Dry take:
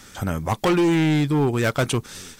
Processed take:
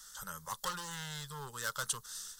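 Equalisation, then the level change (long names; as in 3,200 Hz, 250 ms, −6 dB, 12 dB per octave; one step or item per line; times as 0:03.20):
guitar amp tone stack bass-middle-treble 10-0-10
low-shelf EQ 450 Hz −5.5 dB
phaser with its sweep stopped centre 470 Hz, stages 8
−2.0 dB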